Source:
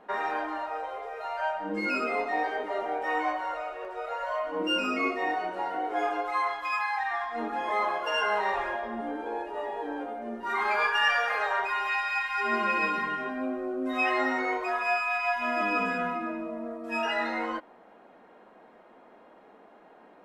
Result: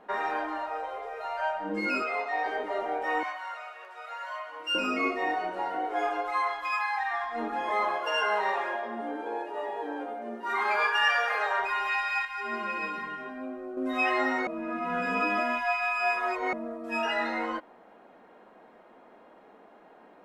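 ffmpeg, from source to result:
-filter_complex "[0:a]asettb=1/sr,asplit=3[a][b][c];[a]atrim=end=2.024[d];[b]atrim=start=2.02:end=2.46,asetpts=PTS-STARTPTS,afade=t=in:d=0.004:c=qsin,afade=t=out:st=0.436:d=0.004:c=qsin,highpass=580,lowpass=7.3k[e];[c]atrim=start=2.456[f];[d][e]acrossfade=d=0.004:c1=hsin:c2=qsin[g];[g][f]acrossfade=d=0.004:c1=qsin:c2=hsin,asettb=1/sr,asplit=3[h][i][j];[h]atrim=end=3.234[k];[i]atrim=start=3.23:end=4.75,asetpts=PTS-STARTPTS,afade=t=in:d=0.004:c=qsin,afade=t=out:st=1.516:d=0.004:c=qsin,highpass=1.2k[l];[j]atrim=start=4.746[m];[k][l]acrossfade=d=0.004:c1=hsin:c2=qsin[n];[n][m]acrossfade=d=0.004:c1=qsin:c2=hsin,asettb=1/sr,asplit=3[o][p][q];[o]atrim=end=5.854[r];[p]atrim=start=5.85:end=7.23,asetpts=PTS-STARTPTS,afade=t=in:d=0.004:c=qsin,afade=t=out:st=1.376:d=0.004:c=qsin,equalizer=f=170:t=o:w=0.77:g=-13[s];[q]atrim=start=7.226[t];[r][s]acrossfade=d=0.004:c1=hsin:c2=qsin[u];[u][t]acrossfade=d=0.004:c1=qsin:c2=hsin,asettb=1/sr,asplit=3[v][w][x];[v]atrim=end=7.964[y];[w]atrim=start=7.96:end=11.58,asetpts=PTS-STARTPTS,afade=t=in:d=0.004:c=qsin,afade=t=out:st=3.616:d=0.004:c=qsin,highpass=230[z];[x]atrim=start=11.576[aa];[y][z]acrossfade=d=0.004:c1=hsin:c2=qsin[ab];[ab][aa]acrossfade=d=0.004:c1=qsin:c2=hsin,asplit=5[ac][ad][ae][af][ag];[ac]atrim=end=12.252[ah];[ad]atrim=start=12.248:end=13.772,asetpts=PTS-STARTPTS,volume=-6dB[ai];[ae]atrim=start=13.768:end=14.472[aj];[af]atrim=start=14.468:end=16.532,asetpts=PTS-STARTPTS,areverse[ak];[ag]atrim=start=16.528[al];[ah][ai]acrossfade=d=0.004:c1=hsin:c2=hsin[am];[am][aj]acrossfade=d=0.004:c1=hsin:c2=hsin[an];[an][ak]acrossfade=d=0.004:c1=hsin:c2=hsin[ao];[ao][al]acrossfade=d=0.004:c1=hsin:c2=hsin"

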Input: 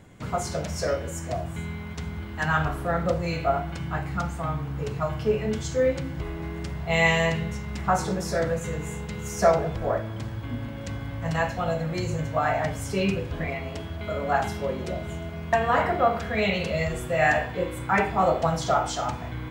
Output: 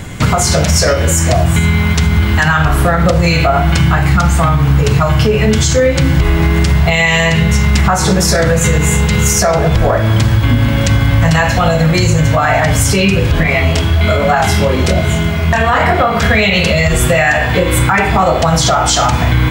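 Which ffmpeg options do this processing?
-filter_complex "[0:a]asettb=1/sr,asplit=3[a][b][c];[a]atrim=end=13.434[d];[b]atrim=start=13.43:end=16.23,asetpts=PTS-STARTPTS,afade=t=in:d=0.004:c=qsin,afade=t=out:st=2.796:d=0.004:c=qsin,flanger=delay=19:depth=7.9:speed=1.1[e];[c]atrim=start=16.226[f];[d][e]acrossfade=d=0.004:c1=hsin:c2=qsin[g];[g][f]acrossfade=d=0.004:c1=qsin:c2=hsin,equalizer=f=450:w=0.36:g=-8,acompressor=threshold=-34dB:ratio=6,alimiter=level_in=29.5dB:limit=-1dB:release=50:level=0:latency=1,volume=-1dB"

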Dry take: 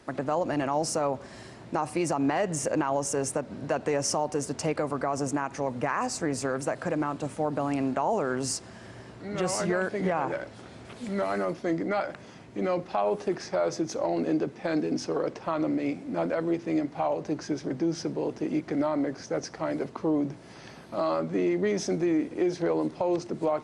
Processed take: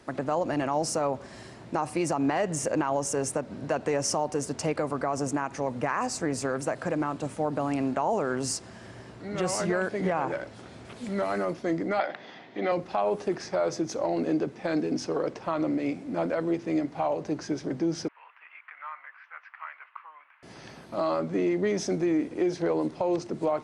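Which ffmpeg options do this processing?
-filter_complex "[0:a]asettb=1/sr,asplit=3[a][b][c];[a]atrim=end=11.994[d];[b]atrim=start=11.99:end=12.72,asetpts=PTS-STARTPTS,afade=t=in:d=0.004:c=qsin,afade=t=out:st=0.726:d=0.004:c=qsin,highpass=240,equalizer=f=750:t=q:w=4:g=7,equalizer=f=1.9k:t=q:w=4:g=9,equalizer=f=3.5k:t=q:w=4:g=9,lowpass=f=5.1k:w=0.5412,lowpass=f=5.1k:w=1.3066[e];[c]atrim=start=12.716[f];[d][e]acrossfade=d=0.004:c1=hsin:c2=qsin[g];[g][f]acrossfade=d=0.004:c1=qsin:c2=hsin,asettb=1/sr,asplit=3[h][i][j];[h]atrim=end=18.084[k];[i]atrim=start=18.08:end=20.43,asetpts=PTS-STARTPTS,afade=t=in:d=0.004:c=qsin,afade=t=out:st=2.346:d=0.004:c=qsin,asuperpass=centerf=1700:order=8:qfactor=1[l];[j]atrim=start=20.426[m];[k][l]acrossfade=d=0.004:c1=hsin:c2=qsin[n];[n][m]acrossfade=d=0.004:c1=qsin:c2=hsin"

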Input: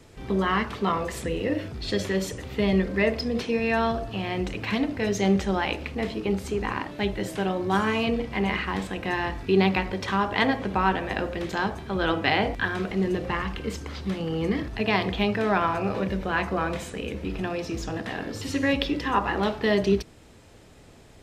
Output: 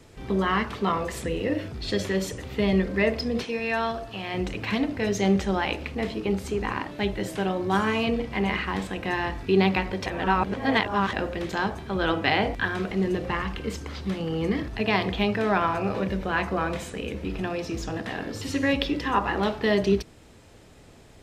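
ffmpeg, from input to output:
-filter_complex "[0:a]asettb=1/sr,asplit=3[a][b][c];[a]atrim=end=3.444[d];[b]atrim=start=3.44:end=4.34,asetpts=PTS-STARTPTS,afade=t=in:d=0.004:c=qsin,afade=t=out:st=0.896:d=0.004:c=qsin,lowshelf=f=450:g=-8[e];[c]atrim=start=4.336[f];[d][e]acrossfade=d=0.004:c1=hsin:c2=qsin[g];[g][f]acrossfade=d=0.004:c1=qsin:c2=hsin,asplit=3[h][i][j];[h]atrim=end=10.062[k];[i]atrim=start=10.058:end=11.132,asetpts=PTS-STARTPTS,areverse[l];[j]atrim=start=11.128[m];[k][l]acrossfade=d=0.004:c1=hsin:c2=hsin[n];[n][m]acrossfade=d=0.004:c1=hsin:c2=hsin"

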